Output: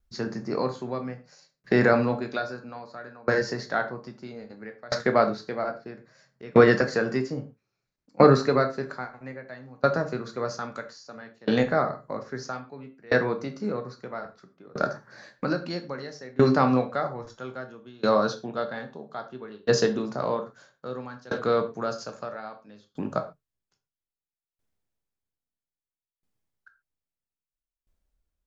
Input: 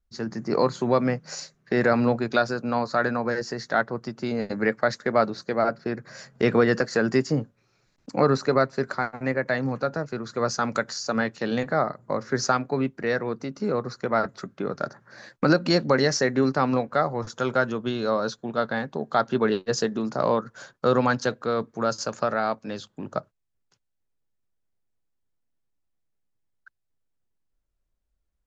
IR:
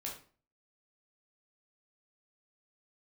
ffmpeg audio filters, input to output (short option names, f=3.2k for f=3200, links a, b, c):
-filter_complex "[0:a]acrossover=split=6800[a][b];[b]acompressor=threshold=-58dB:ratio=4:attack=1:release=60[c];[a][c]amix=inputs=2:normalize=0,asplit=2[d][e];[1:a]atrim=start_sample=2205,atrim=end_sample=6615[f];[e][f]afir=irnorm=-1:irlink=0,volume=1.5dB[g];[d][g]amix=inputs=2:normalize=0,aeval=exprs='val(0)*pow(10,-27*if(lt(mod(0.61*n/s,1),2*abs(0.61)/1000),1-mod(0.61*n/s,1)/(2*abs(0.61)/1000),(mod(0.61*n/s,1)-2*abs(0.61)/1000)/(1-2*abs(0.61)/1000))/20)':c=same"